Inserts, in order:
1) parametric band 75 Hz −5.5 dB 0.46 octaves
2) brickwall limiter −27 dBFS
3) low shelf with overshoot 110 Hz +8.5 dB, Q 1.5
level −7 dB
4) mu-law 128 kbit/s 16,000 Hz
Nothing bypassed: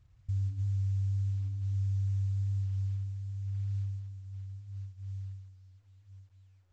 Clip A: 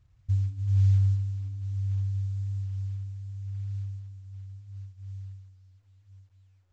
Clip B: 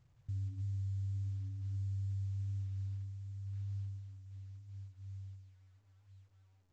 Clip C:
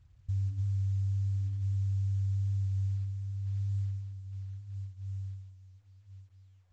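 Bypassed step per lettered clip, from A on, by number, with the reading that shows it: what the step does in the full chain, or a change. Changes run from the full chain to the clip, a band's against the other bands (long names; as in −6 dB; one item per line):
2, change in crest factor +6.0 dB
3, change in integrated loudness −7.0 LU
1, change in momentary loudness spread −1 LU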